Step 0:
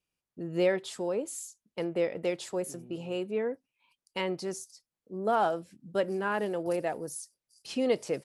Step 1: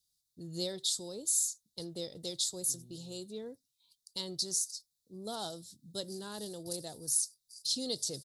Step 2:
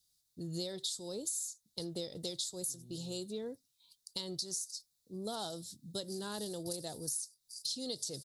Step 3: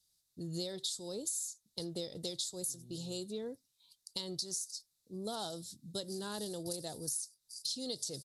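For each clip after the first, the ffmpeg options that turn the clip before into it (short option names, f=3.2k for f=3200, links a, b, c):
-af "firequalizer=gain_entry='entry(130,0);entry(190,-8);entry(560,-15);entry(2500,-23);entry(3700,13);entry(5600,11)':delay=0.05:min_phase=1"
-af "acompressor=threshold=-40dB:ratio=6,volume=4dB"
-af "aeval=exprs='0.0841*(cos(1*acos(clip(val(0)/0.0841,-1,1)))-cos(1*PI/2))+0.00335*(cos(3*acos(clip(val(0)/0.0841,-1,1)))-cos(3*PI/2))':c=same,aresample=32000,aresample=44100,volume=1dB"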